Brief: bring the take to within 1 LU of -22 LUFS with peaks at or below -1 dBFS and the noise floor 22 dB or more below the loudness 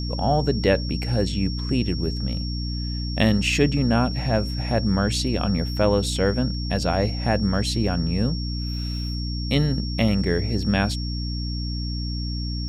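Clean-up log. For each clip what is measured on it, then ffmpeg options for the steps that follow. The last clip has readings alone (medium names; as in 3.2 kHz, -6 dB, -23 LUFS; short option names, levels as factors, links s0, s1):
hum 60 Hz; highest harmonic 300 Hz; hum level -25 dBFS; steady tone 5.5 kHz; tone level -34 dBFS; loudness -23.5 LUFS; peak level -5.5 dBFS; loudness target -22.0 LUFS
-> -af "bandreject=f=60:t=h:w=4,bandreject=f=120:t=h:w=4,bandreject=f=180:t=h:w=4,bandreject=f=240:t=h:w=4,bandreject=f=300:t=h:w=4"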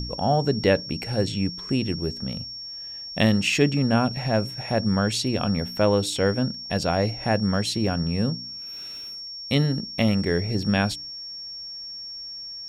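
hum not found; steady tone 5.5 kHz; tone level -34 dBFS
-> -af "bandreject=f=5500:w=30"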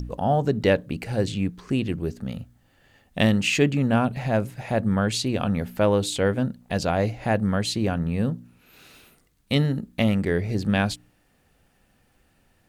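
steady tone not found; loudness -24.5 LUFS; peak level -6.5 dBFS; loudness target -22.0 LUFS
-> -af "volume=1.33"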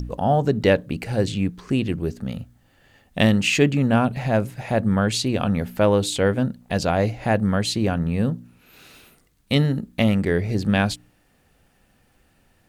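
loudness -22.0 LUFS; peak level -4.0 dBFS; noise floor -62 dBFS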